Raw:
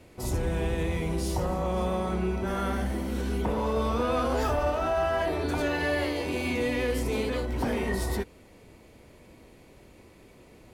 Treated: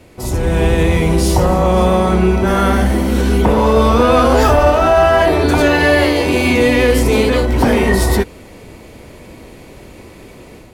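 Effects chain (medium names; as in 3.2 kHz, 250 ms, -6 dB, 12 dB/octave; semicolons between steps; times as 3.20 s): level rider gain up to 7 dB; trim +9 dB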